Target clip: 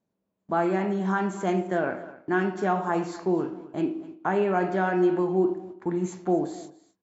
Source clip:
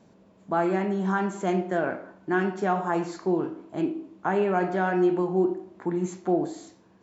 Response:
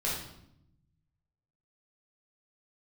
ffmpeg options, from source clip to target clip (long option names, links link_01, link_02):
-filter_complex "[0:a]agate=range=-24dB:threshold=-44dB:ratio=16:detection=peak,asplit=2[link_01][link_02];[link_02]aecho=0:1:256:0.126[link_03];[link_01][link_03]amix=inputs=2:normalize=0"